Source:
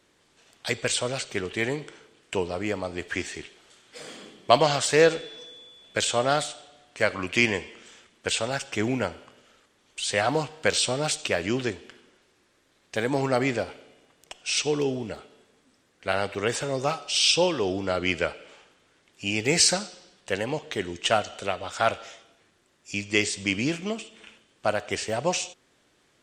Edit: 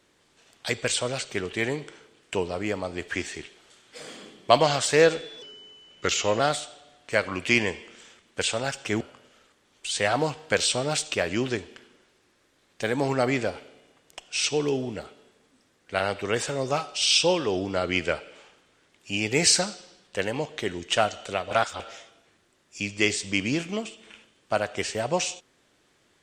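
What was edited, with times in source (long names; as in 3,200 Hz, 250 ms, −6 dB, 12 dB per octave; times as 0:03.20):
0:05.42–0:06.27: play speed 87%
0:08.88–0:09.14: remove
0:21.64–0:21.93: reverse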